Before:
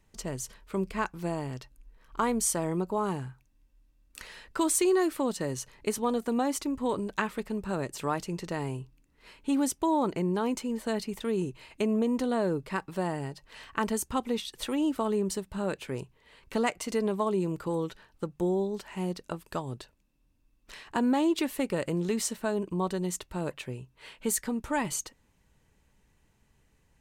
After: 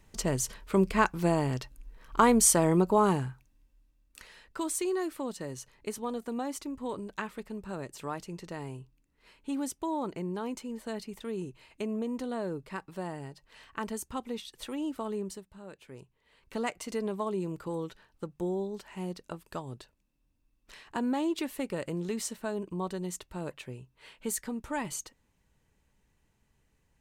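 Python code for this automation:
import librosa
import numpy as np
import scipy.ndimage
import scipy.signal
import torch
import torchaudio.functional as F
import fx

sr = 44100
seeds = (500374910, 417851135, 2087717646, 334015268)

y = fx.gain(x, sr, db=fx.line((3.04, 6.0), (4.28, -6.5), (15.22, -6.5), (15.6, -16.5), (16.69, -4.5)))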